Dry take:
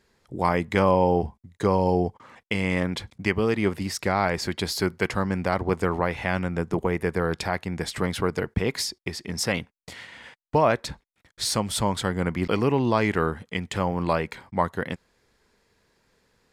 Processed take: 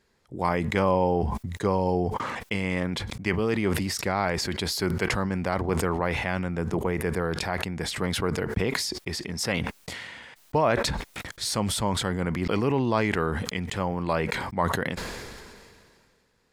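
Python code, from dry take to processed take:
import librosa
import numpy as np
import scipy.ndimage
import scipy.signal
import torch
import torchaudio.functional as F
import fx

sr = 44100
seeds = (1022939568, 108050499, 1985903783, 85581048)

y = fx.sustainer(x, sr, db_per_s=28.0)
y = y * librosa.db_to_amplitude(-3.0)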